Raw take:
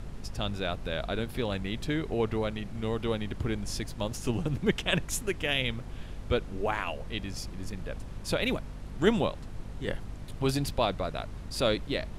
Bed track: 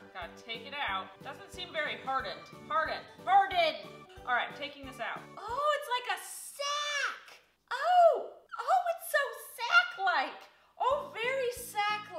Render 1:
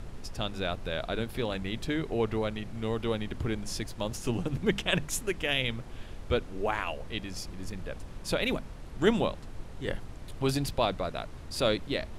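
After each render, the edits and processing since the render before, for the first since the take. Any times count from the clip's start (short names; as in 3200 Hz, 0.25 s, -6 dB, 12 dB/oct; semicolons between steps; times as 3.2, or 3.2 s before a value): notches 50/100/150/200/250 Hz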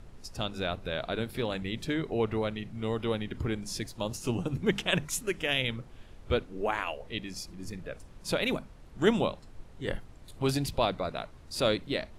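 noise print and reduce 8 dB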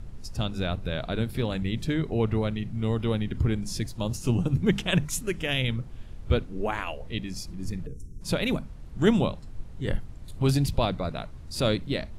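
tone controls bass +10 dB, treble +2 dB; 7.87–8.21 spectral gain 480–5300 Hz -28 dB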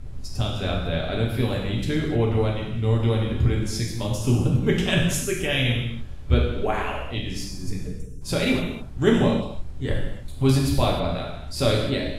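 non-linear reverb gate 0.33 s falling, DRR -2.5 dB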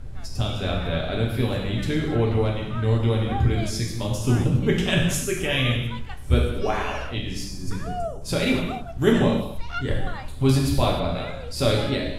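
add bed track -8 dB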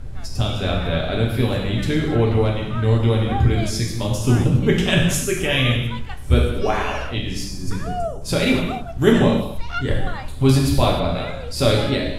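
gain +4 dB; limiter -1 dBFS, peak gain reduction 1 dB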